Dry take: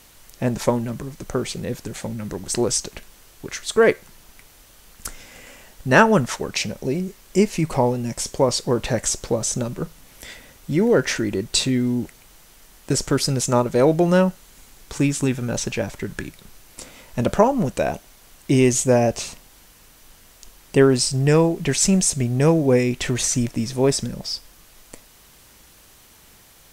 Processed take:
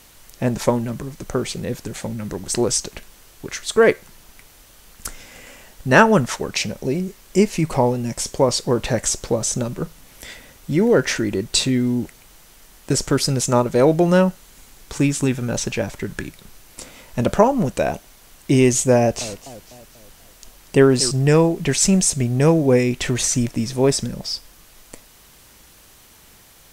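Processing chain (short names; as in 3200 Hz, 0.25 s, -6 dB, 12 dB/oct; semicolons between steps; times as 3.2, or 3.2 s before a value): 18.97–21.11 warbling echo 0.246 s, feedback 50%, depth 219 cents, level -15.5 dB; gain +1.5 dB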